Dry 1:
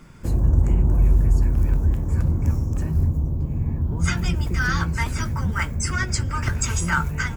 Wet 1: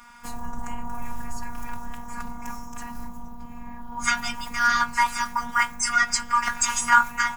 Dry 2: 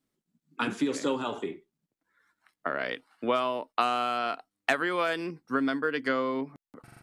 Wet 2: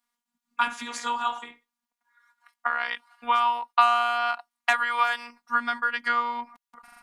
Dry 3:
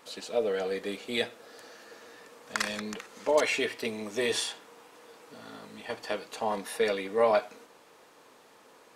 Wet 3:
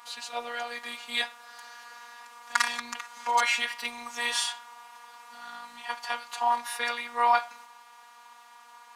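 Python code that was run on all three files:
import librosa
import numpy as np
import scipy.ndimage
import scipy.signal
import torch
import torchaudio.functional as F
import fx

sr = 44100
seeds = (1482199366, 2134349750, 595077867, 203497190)

y = fx.low_shelf_res(x, sr, hz=640.0, db=-13.5, q=3.0)
y = fx.robotise(y, sr, hz=239.0)
y = y * librosa.db_to_amplitude(5.0)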